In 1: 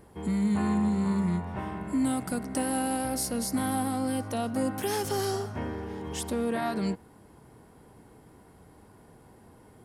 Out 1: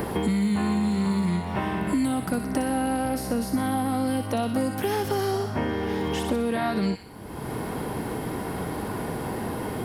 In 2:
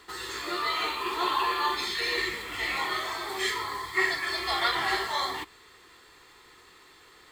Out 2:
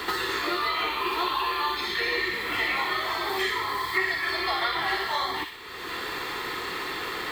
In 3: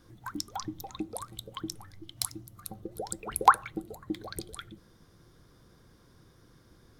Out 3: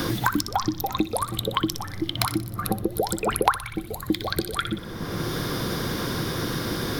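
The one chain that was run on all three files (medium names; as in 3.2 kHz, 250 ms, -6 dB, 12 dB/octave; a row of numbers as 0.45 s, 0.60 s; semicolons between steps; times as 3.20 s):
peaking EQ 7.6 kHz -10.5 dB 1.1 oct; feedback echo behind a high-pass 61 ms, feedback 42%, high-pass 2 kHz, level -5 dB; three bands compressed up and down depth 100%; normalise loudness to -27 LUFS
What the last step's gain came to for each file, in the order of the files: +3.5 dB, +2.0 dB, +13.5 dB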